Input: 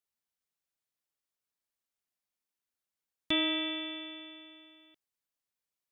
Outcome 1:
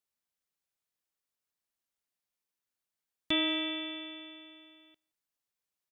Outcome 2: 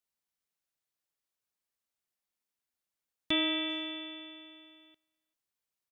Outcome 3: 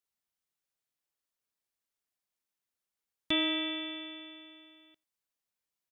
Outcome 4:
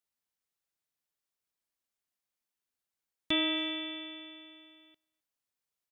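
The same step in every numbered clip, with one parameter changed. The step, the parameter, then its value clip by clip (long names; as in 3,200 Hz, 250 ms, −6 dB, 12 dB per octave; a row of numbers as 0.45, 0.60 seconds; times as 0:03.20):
far-end echo of a speakerphone, delay time: 170, 390, 90, 260 milliseconds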